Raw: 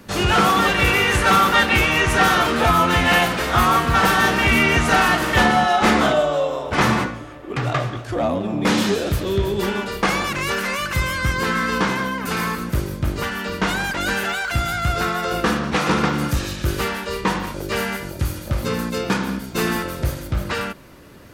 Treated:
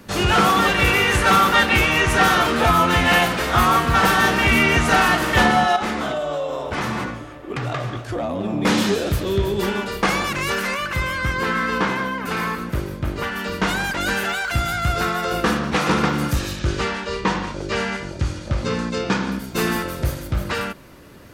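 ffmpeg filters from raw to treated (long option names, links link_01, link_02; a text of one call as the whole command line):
ffmpeg -i in.wav -filter_complex "[0:a]asettb=1/sr,asplit=3[link_01][link_02][link_03];[link_01]atrim=end=5.764[link_04];[link_02]atrim=start=5.76:end=8.39,asetpts=PTS-STARTPTS,afade=type=in:duration=0.004:curve=qsin,afade=type=out:start_time=2.626:duration=0.004:curve=qsin,acompressor=threshold=-21dB:ratio=5:attack=3.2:release=140:knee=1:detection=peak[link_05];[link_03]atrim=start=8.386[link_06];[link_04][link_05]acrossfade=duration=0.004:curve1=hsin:curve2=qsin[link_07];[link_07][link_06]acrossfade=duration=0.004:curve1=qsin:curve2=hsin,asettb=1/sr,asplit=3[link_08][link_09][link_10];[link_08]atrim=end=10.744[link_11];[link_09]atrim=start=10.74:end=13.36,asetpts=PTS-STARTPTS,afade=type=in:duration=0.004:curve=qsin,afade=type=out:start_time=2.616:duration=0.004:curve=qsin,bass=frequency=250:gain=-3,treble=frequency=4000:gain=-7[link_12];[link_10]atrim=start=13.356[link_13];[link_11][link_12]acrossfade=duration=0.004:curve1=hsin:curve2=qsin[link_14];[link_14][link_13]acrossfade=duration=0.004:curve1=qsin:curve2=hsin,asettb=1/sr,asplit=3[link_15][link_16][link_17];[link_15]atrim=end=16.594[link_18];[link_16]atrim=start=16.59:end=19.32,asetpts=PTS-STARTPTS,afade=type=in:duration=0.004:curve=qsin,afade=type=out:start_time=2.726:duration=0.004:curve=qsin,lowpass=frequency=7300:width=0.5412,lowpass=frequency=7300:width=1.3066[link_19];[link_17]atrim=start=19.316[link_20];[link_18][link_19]acrossfade=duration=0.004:curve1=hsin:curve2=qsin[link_21];[link_21][link_20]acrossfade=duration=0.004:curve1=qsin:curve2=hsin" out.wav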